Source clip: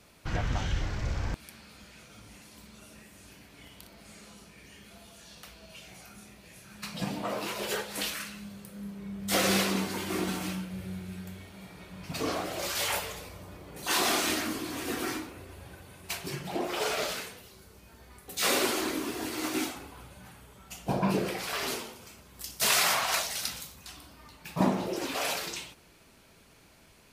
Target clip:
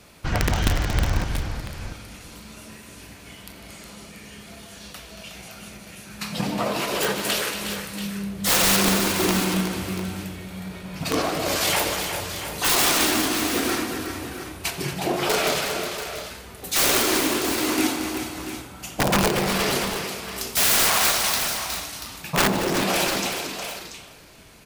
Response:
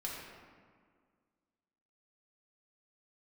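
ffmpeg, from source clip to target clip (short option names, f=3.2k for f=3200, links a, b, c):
-filter_complex "[0:a]asplit=2[a][b];[b]aecho=0:1:459:0.15[c];[a][c]amix=inputs=2:normalize=0,atempo=1.1,aeval=exprs='(mod(11.2*val(0)+1,2)-1)/11.2':c=same,asplit=2[d][e];[e]aecho=0:1:87|150|230|364|685|721:0.119|0.2|0.299|0.398|0.282|0.112[f];[d][f]amix=inputs=2:normalize=0,volume=8dB"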